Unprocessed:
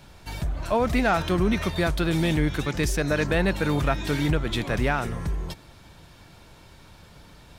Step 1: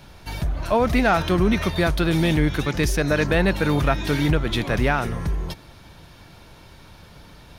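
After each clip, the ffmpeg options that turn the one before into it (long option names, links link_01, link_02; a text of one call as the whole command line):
ffmpeg -i in.wav -af "equalizer=frequency=7700:width_type=o:width=0.2:gain=-9,volume=3.5dB" out.wav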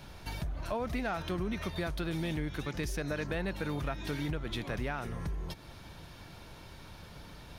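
ffmpeg -i in.wav -af "acompressor=threshold=-34dB:ratio=2.5,volume=-3.5dB" out.wav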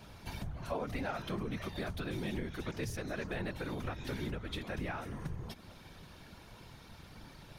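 ffmpeg -i in.wav -af "afftfilt=real='hypot(re,im)*cos(2*PI*random(0))':imag='hypot(re,im)*sin(2*PI*random(1))':win_size=512:overlap=0.75,volume=2.5dB" out.wav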